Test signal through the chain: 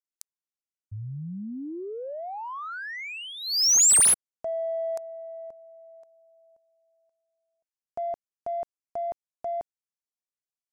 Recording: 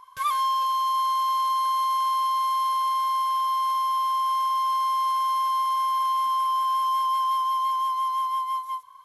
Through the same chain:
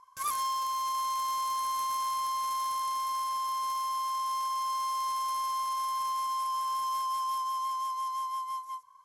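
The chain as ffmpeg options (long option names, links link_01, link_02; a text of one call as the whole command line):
ffmpeg -i in.wav -af "aexciter=amount=9.1:drive=6.5:freq=5200,adynamicsmooth=sensitivity=2:basefreq=3200,volume=-7.5dB" out.wav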